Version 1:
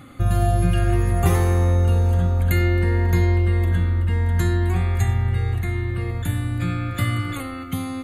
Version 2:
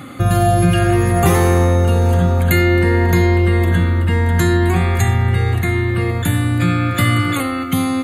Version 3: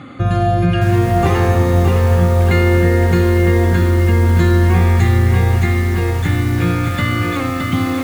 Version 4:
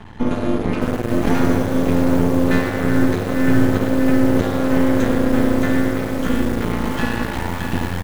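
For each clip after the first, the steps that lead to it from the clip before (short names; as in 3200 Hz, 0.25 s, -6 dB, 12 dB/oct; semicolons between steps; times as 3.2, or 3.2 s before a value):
HPF 120 Hz 12 dB/oct; in parallel at +1 dB: limiter -18 dBFS, peak gain reduction 9.5 dB; on the sum: gain +4.5 dB
air absorption 120 m; lo-fi delay 0.617 s, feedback 55%, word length 5-bit, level -4.5 dB; gain -1 dB
frequency shift -350 Hz; half-wave rectifier; frequency-shifting echo 0.111 s, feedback 56%, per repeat +100 Hz, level -11.5 dB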